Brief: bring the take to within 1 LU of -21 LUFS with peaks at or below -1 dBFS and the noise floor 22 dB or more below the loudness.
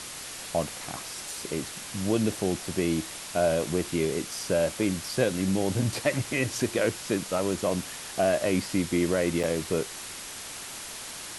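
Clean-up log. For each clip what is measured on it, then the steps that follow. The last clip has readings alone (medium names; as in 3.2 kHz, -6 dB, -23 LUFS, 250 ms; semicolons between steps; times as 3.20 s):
dropouts 1; longest dropout 6.6 ms; noise floor -40 dBFS; noise floor target -51 dBFS; loudness -28.5 LUFS; peak level -10.5 dBFS; loudness target -21.0 LUFS
-> interpolate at 9.43 s, 6.6 ms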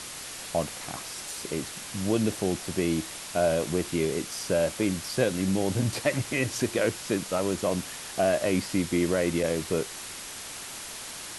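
dropouts 0; noise floor -40 dBFS; noise floor target -51 dBFS
-> noise reduction 11 dB, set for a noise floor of -40 dBFS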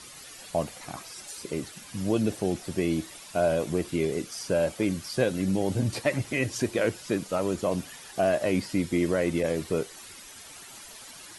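noise floor -46 dBFS; noise floor target -51 dBFS
-> noise reduction 6 dB, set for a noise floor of -46 dBFS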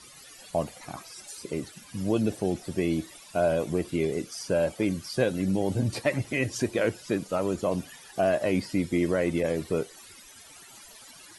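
noise floor -50 dBFS; noise floor target -51 dBFS
-> noise reduction 6 dB, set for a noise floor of -50 dBFS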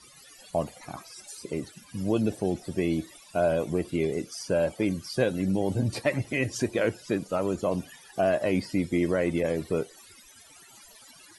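noise floor -53 dBFS; loudness -28.5 LUFS; peak level -11.0 dBFS; loudness target -21.0 LUFS
-> trim +7.5 dB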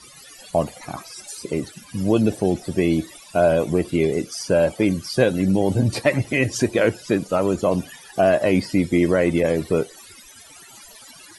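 loudness -21.0 LUFS; peak level -3.5 dBFS; noise floor -45 dBFS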